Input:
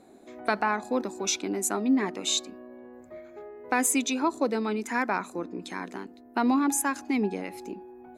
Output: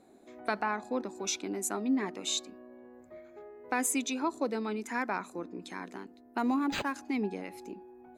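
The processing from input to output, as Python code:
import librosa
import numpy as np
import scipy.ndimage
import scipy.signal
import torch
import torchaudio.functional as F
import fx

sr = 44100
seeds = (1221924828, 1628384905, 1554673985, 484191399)

y = fx.high_shelf(x, sr, hz=fx.line((0.61, 11000.0), (1.14, 6800.0)), db=-9.0, at=(0.61, 1.14), fade=0.02)
y = fx.resample_linear(y, sr, factor=4, at=(6.38, 6.94))
y = F.gain(torch.from_numpy(y), -5.5).numpy()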